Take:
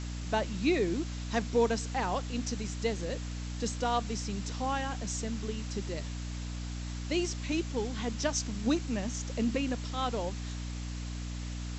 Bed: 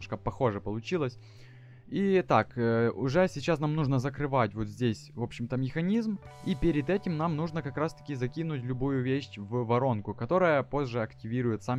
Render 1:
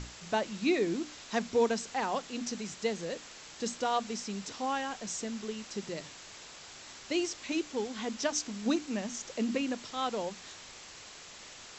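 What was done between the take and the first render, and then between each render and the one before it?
notches 60/120/180/240/300 Hz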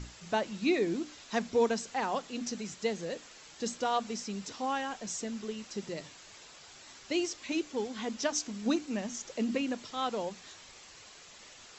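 denoiser 6 dB, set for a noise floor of -50 dBFS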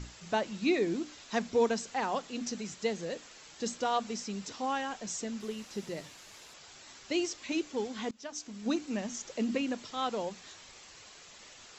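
5.4–6.54 delta modulation 64 kbps, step -52 dBFS; 8.11–8.88 fade in, from -22 dB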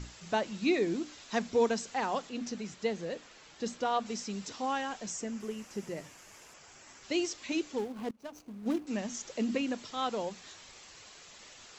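2.29–4.06 high shelf 6100 Hz -11 dB; 5.1–7.03 bell 3900 Hz -10.5 dB 0.57 oct; 7.78–8.87 median filter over 25 samples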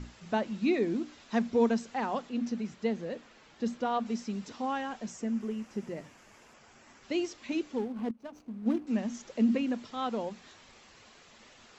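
LPF 2500 Hz 6 dB/oct; bell 230 Hz +8 dB 0.28 oct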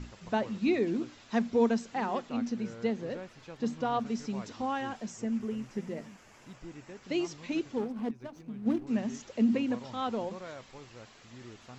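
add bed -19.5 dB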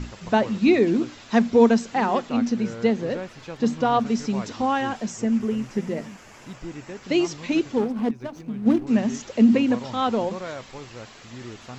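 gain +10 dB

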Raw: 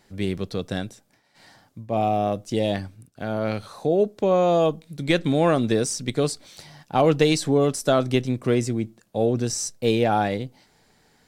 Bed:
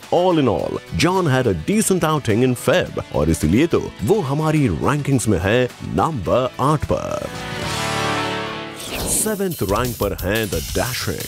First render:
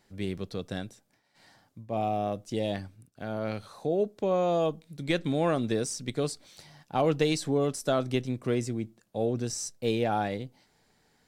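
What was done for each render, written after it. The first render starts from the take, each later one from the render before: gain -7 dB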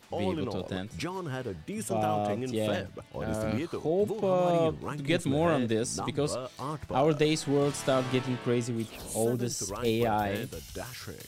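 add bed -18.5 dB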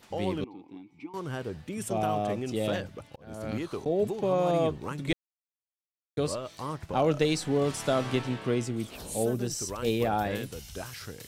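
0.44–1.14 vowel filter u; 2.61–3.86 auto swell 0.506 s; 5.13–6.17 mute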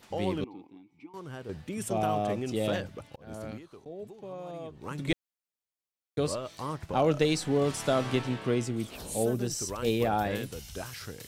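0.67–1.49 gain -6.5 dB; 3.35–4.98 dip -15 dB, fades 0.26 s

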